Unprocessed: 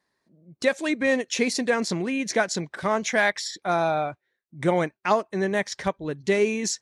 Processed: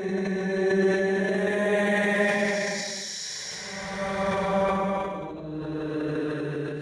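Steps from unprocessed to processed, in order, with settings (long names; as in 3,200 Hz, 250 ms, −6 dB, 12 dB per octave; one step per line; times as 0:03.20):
extreme stretch with random phases 8×, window 0.25 s, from 0:05.32
transient designer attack 0 dB, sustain +8 dB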